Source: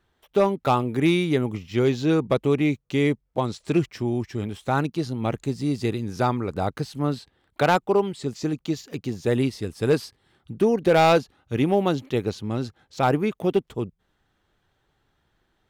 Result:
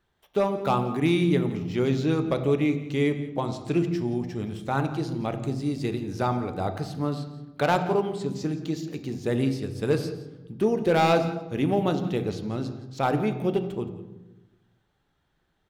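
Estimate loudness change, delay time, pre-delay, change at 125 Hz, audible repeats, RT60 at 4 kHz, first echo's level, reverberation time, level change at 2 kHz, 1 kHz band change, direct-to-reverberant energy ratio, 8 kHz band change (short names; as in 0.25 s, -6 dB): -2.5 dB, 0.171 s, 3 ms, -1.5 dB, 1, 0.70 s, -17.0 dB, 1.0 s, -3.5 dB, -3.0 dB, 7.5 dB, -3.5 dB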